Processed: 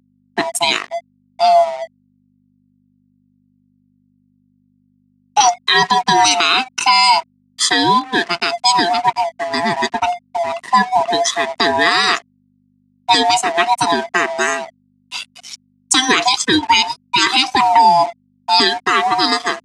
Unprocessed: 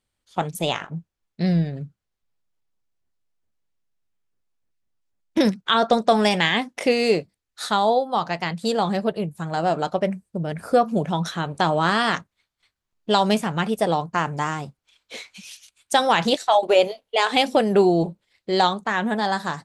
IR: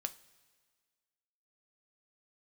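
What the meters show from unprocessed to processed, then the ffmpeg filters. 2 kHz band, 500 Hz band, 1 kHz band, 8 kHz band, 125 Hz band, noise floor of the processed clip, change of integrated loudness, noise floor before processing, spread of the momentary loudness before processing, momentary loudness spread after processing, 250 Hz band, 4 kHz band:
+9.5 dB, +1.5 dB, +9.0 dB, +17.5 dB, -7.5 dB, -59 dBFS, +7.5 dB, -82 dBFS, 14 LU, 11 LU, -0.5 dB, +11.5 dB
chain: -af "afftfilt=real='real(if(lt(b,1008),b+24*(1-2*mod(floor(b/24),2)),b),0)':imag='imag(if(lt(b,1008),b+24*(1-2*mod(floor(b/24),2)),b),0)':win_size=2048:overlap=0.75,afftdn=nr=20:nf=-41,equalizer=f=6.5k:t=o:w=1.5:g=10,aeval=exprs='sgn(val(0))*max(abs(val(0))-0.00944,0)':c=same,aeval=exprs='val(0)+0.00398*(sin(2*PI*50*n/s)+sin(2*PI*2*50*n/s)/2+sin(2*PI*3*50*n/s)/3+sin(2*PI*4*50*n/s)/4+sin(2*PI*5*50*n/s)/5)':c=same,highpass=450,equalizer=f=490:t=q:w=4:g=-9,equalizer=f=810:t=q:w=4:g=-5,equalizer=f=1.6k:t=q:w=4:g=-6,equalizer=f=3.6k:t=q:w=4:g=-3,lowpass=f=9.9k:w=0.5412,lowpass=f=9.9k:w=1.3066,alimiter=level_in=14dB:limit=-1dB:release=50:level=0:latency=1,volume=-1dB"

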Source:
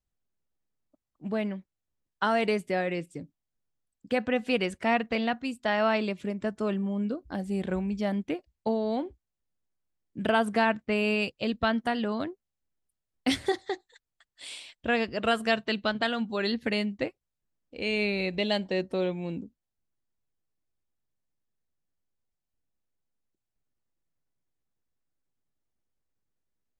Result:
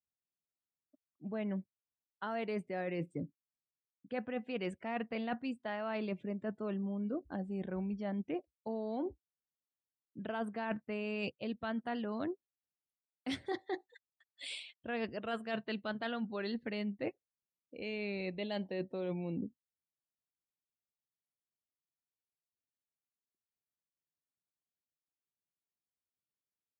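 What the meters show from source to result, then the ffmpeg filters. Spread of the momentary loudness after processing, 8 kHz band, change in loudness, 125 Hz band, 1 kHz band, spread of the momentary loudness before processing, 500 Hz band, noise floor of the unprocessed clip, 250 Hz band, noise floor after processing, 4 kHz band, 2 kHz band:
6 LU, -13.5 dB, -10.5 dB, -7.0 dB, -12.0 dB, 11 LU, -10.5 dB, under -85 dBFS, -8.5 dB, under -85 dBFS, -13.5 dB, -13.0 dB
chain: -af "highpass=89,afftdn=nr=18:nf=-49,highshelf=f=3.4k:g=-9,areverse,acompressor=threshold=-38dB:ratio=16,areverse,volume=3.5dB"

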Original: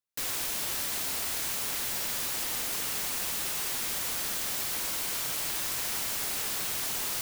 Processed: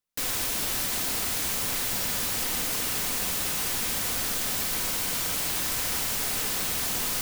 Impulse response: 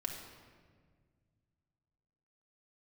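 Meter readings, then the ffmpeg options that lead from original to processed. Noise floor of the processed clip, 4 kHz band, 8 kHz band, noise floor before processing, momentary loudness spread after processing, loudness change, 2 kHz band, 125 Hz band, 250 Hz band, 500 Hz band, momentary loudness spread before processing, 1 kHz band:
-29 dBFS, +3.5 dB, +3.5 dB, -33 dBFS, 0 LU, +3.5 dB, +4.0 dB, +8.5 dB, +8.0 dB, +5.0 dB, 0 LU, +4.0 dB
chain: -filter_complex "[0:a]asplit=2[a][b];[1:a]atrim=start_sample=2205,lowshelf=f=440:g=9.5[c];[b][c]afir=irnorm=-1:irlink=0,volume=-4.5dB[d];[a][d]amix=inputs=2:normalize=0"

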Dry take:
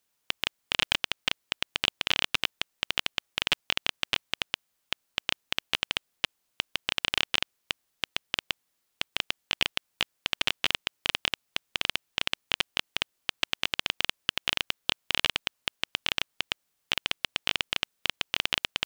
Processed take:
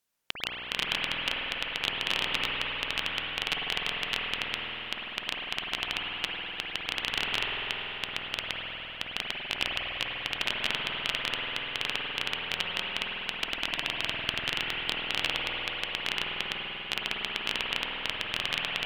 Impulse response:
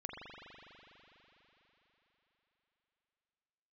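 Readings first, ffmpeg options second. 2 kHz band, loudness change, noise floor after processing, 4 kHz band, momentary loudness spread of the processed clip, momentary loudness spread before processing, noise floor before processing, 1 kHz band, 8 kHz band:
+0.5 dB, -1.0 dB, -40 dBFS, -1.5 dB, 5 LU, 7 LU, -77 dBFS, +1.5 dB, -4.5 dB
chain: -filter_complex "[1:a]atrim=start_sample=2205,asetrate=37044,aresample=44100[a];[0:a][a]afir=irnorm=-1:irlink=0"

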